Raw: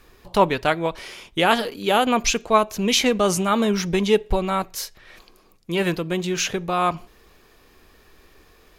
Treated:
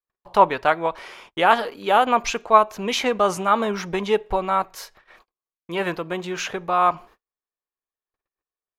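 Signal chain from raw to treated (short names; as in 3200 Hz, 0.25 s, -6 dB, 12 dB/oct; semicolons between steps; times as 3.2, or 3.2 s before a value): gate -45 dBFS, range -45 dB; bell 1000 Hz +14.5 dB 2.6 oct; gain -10 dB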